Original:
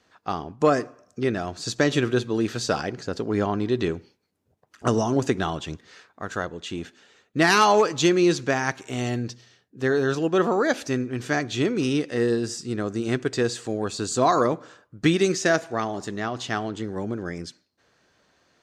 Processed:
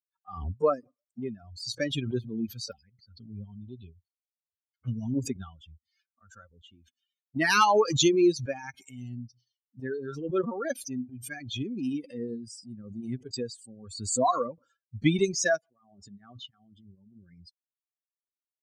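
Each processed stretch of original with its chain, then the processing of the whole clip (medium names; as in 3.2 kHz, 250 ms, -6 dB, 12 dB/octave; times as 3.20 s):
2.71–5.15 s: low-pass 5.5 kHz 24 dB/octave + peaking EQ 490 Hz -5 dB 2.3 oct + touch-sensitive flanger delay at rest 11.7 ms, full sweep at -25.5 dBFS
15.62–17.44 s: compressor with a negative ratio -32 dBFS, ratio -0.5 + distance through air 71 m
whole clip: expander on every frequency bin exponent 3; high-pass 78 Hz 24 dB/octave; swell ahead of each attack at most 64 dB/s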